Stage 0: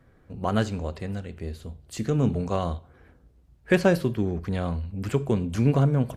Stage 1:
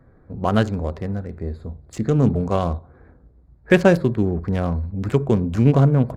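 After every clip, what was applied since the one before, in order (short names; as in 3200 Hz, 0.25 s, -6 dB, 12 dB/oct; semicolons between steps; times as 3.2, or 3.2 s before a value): Wiener smoothing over 15 samples; gain +6 dB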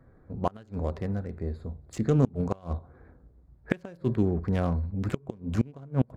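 flipped gate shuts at -7 dBFS, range -27 dB; gain -4.5 dB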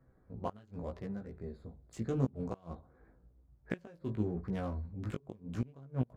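chorus 0.86 Hz, delay 15 ms, depth 4.3 ms; gain -6.5 dB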